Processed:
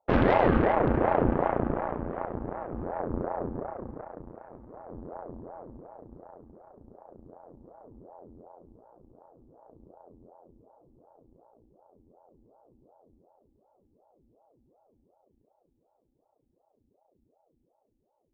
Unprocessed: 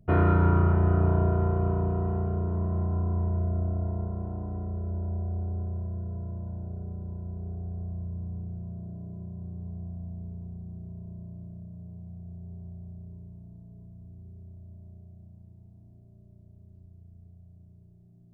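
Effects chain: added harmonics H 4 -15 dB, 5 -15 dB, 7 -12 dB, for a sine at -10.5 dBFS; ring modulator with a swept carrier 440 Hz, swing 70%, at 2.7 Hz

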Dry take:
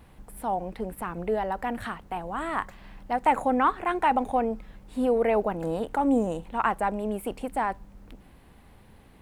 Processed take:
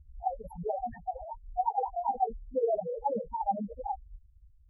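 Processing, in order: fixed phaser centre 1200 Hz, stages 6; loudest bins only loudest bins 1; plain phase-vocoder stretch 0.51×; gain +9 dB

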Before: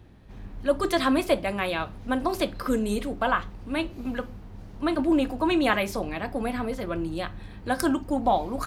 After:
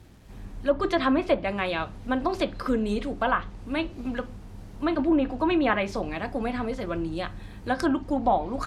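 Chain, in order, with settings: requantised 10-bit, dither none; treble ducked by the level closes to 2200 Hz, closed at -18 dBFS

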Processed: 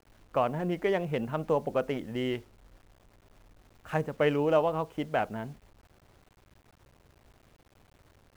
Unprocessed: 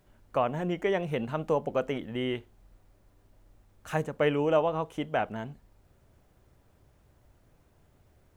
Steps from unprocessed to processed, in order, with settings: Wiener smoothing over 9 samples; requantised 10-bit, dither none

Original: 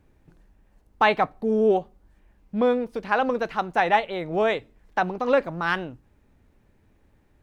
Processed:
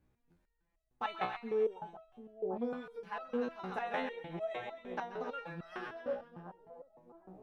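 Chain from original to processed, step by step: split-band echo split 890 Hz, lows 0.744 s, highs 0.131 s, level -6 dB; stepped resonator 6.6 Hz 62–650 Hz; gain -5.5 dB

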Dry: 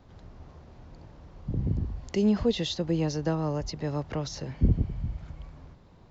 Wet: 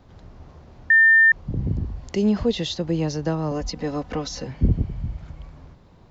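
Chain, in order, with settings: 0.9–1.32 bleep 1800 Hz -14 dBFS; 3.51–4.47 comb 4 ms, depth 82%; gain +3.5 dB

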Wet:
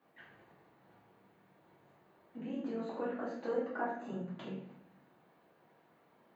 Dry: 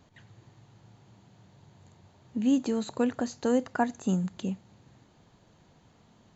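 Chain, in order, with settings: HPF 80 Hz; gate -54 dBFS, range -7 dB; added noise violet -67 dBFS; compressor 3:1, threshold -40 dBFS, peak gain reduction 14.5 dB; three-band isolator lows -23 dB, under 260 Hz, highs -24 dB, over 2600 Hz; AM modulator 48 Hz, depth 35%; reverb RT60 0.70 s, pre-delay 3 ms, DRR -9 dB; gain -1.5 dB

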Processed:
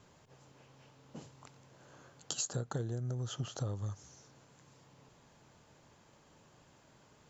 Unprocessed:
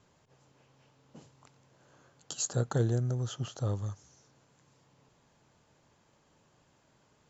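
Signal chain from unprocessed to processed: compressor 16:1, threshold -37 dBFS, peak gain reduction 15.5 dB; gain +4 dB

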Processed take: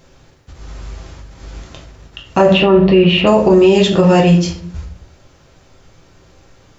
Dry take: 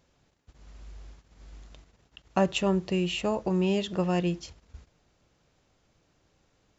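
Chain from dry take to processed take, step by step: 2.53–3.27 LPF 3500 Hz 24 dB/oct; shoebox room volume 53 m³, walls mixed, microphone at 0.68 m; maximiser +17 dB; gain -1 dB

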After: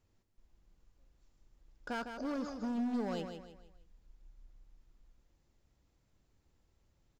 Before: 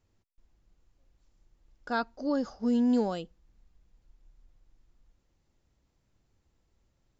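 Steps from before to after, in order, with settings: compressor 4:1, threshold -29 dBFS, peak gain reduction 6.5 dB; hard clip -32.5 dBFS, distortion -10 dB; on a send: feedback echo 0.155 s, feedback 37%, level -7.5 dB; on the sum: gain -1.5 dB

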